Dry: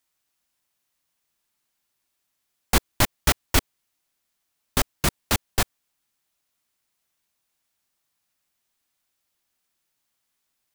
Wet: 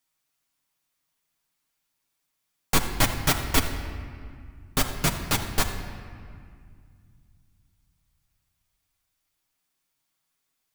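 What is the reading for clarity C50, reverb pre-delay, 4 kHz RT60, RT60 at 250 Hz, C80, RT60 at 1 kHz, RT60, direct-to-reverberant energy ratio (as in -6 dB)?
7.5 dB, 6 ms, 1.4 s, 3.0 s, 8.0 dB, 2.1 s, 2.1 s, 1.5 dB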